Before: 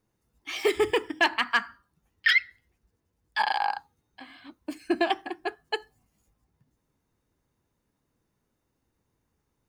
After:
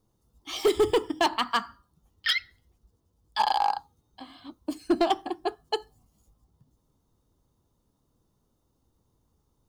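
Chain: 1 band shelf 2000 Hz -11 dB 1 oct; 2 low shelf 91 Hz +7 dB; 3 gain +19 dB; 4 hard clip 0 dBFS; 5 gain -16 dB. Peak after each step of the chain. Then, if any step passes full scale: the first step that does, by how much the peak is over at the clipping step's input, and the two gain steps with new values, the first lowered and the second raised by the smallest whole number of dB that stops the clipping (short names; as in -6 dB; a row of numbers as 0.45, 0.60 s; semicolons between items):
-13.0, -12.5, +6.5, 0.0, -16.0 dBFS; step 3, 6.5 dB; step 3 +12 dB, step 5 -9 dB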